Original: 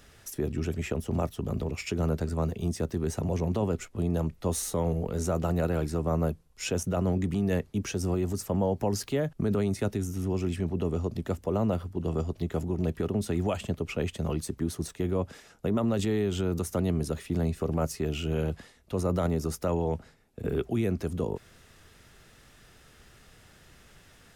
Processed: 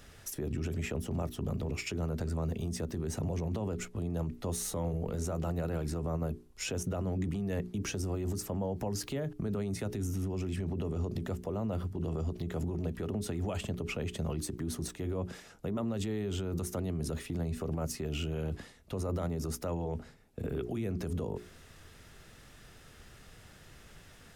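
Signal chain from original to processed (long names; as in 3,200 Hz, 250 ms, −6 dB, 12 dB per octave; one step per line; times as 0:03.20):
low-shelf EQ 340 Hz +3 dB
mains-hum notches 60/120/180/240/300/360/420 Hz
brickwall limiter −26.5 dBFS, peak gain reduction 11 dB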